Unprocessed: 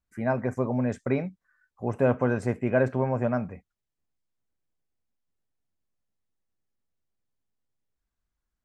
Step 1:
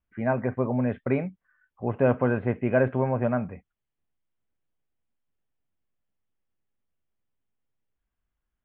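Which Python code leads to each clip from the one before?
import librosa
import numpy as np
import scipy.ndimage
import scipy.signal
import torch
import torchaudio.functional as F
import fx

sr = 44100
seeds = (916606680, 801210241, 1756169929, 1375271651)

y = scipy.signal.sosfilt(scipy.signal.butter(12, 3400.0, 'lowpass', fs=sr, output='sos'), x)
y = y * librosa.db_to_amplitude(1.0)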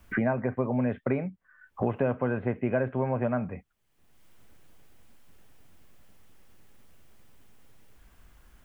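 y = fx.band_squash(x, sr, depth_pct=100)
y = y * librosa.db_to_amplitude(-3.0)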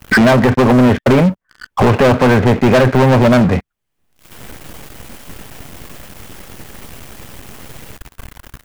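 y = fx.leveller(x, sr, passes=5)
y = y * librosa.db_to_amplitude(8.0)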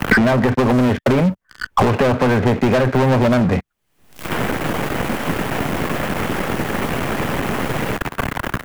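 y = fx.band_squash(x, sr, depth_pct=100)
y = y * librosa.db_to_amplitude(-4.5)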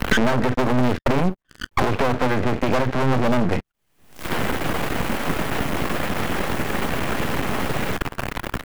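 y = np.maximum(x, 0.0)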